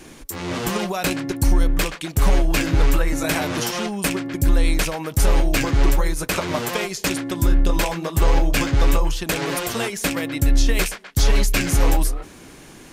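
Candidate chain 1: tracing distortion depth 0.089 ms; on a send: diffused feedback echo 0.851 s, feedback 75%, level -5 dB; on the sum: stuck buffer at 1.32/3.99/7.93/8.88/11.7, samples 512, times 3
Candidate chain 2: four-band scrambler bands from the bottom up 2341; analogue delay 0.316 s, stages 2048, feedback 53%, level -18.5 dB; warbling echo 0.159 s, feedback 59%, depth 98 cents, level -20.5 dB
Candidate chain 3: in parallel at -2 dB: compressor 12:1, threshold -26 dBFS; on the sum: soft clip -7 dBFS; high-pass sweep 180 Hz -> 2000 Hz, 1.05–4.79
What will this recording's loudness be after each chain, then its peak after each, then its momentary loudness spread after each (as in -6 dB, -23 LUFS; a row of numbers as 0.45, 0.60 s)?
-20.0, -14.5, -21.5 LUFS; -3.0, -5.0, -3.0 dBFS; 4, 10, 9 LU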